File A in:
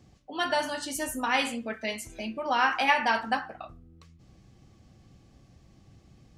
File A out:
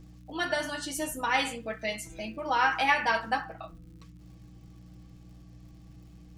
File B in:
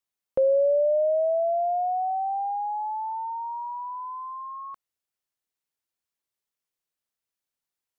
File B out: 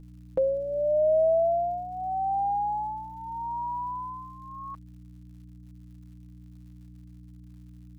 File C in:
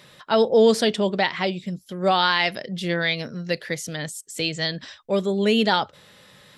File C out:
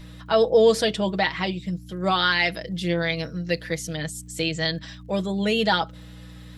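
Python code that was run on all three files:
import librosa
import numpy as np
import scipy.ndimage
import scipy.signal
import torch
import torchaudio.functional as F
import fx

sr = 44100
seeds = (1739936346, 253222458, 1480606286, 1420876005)

y = fx.add_hum(x, sr, base_hz=60, snr_db=16)
y = y + 0.65 * np.pad(y, (int(6.2 * sr / 1000.0), 0))[:len(y)]
y = fx.dmg_crackle(y, sr, seeds[0], per_s=190.0, level_db=-52.0)
y = y * librosa.db_to_amplitude(-2.5)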